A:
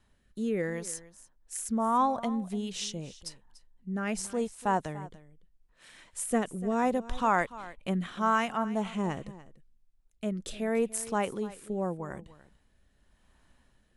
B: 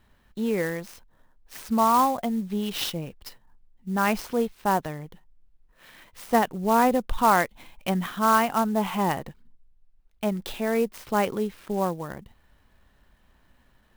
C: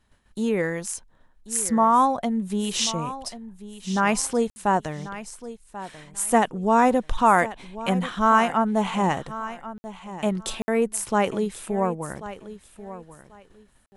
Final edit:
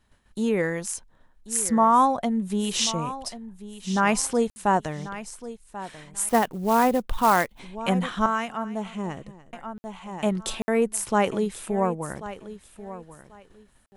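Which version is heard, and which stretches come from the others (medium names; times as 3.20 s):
C
6.29–7.59 s: from B
8.26–9.53 s: from A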